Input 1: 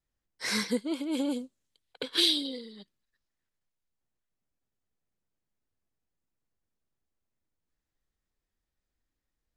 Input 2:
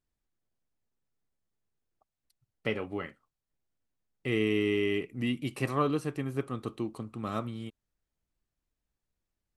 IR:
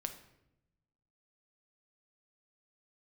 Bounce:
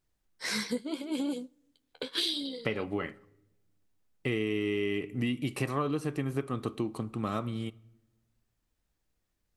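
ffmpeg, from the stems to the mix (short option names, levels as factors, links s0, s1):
-filter_complex "[0:a]tremolo=f=66:d=0.261,flanger=delay=6.2:depth=6.6:regen=-42:speed=0.77:shape=sinusoidal,volume=1.41,asplit=2[s0][s1];[s1]volume=0.112[s2];[1:a]volume=1.41,asplit=2[s3][s4];[s4]volume=0.299[s5];[2:a]atrim=start_sample=2205[s6];[s2][s5]amix=inputs=2:normalize=0[s7];[s7][s6]afir=irnorm=-1:irlink=0[s8];[s0][s3][s8]amix=inputs=3:normalize=0,acompressor=threshold=0.0447:ratio=6"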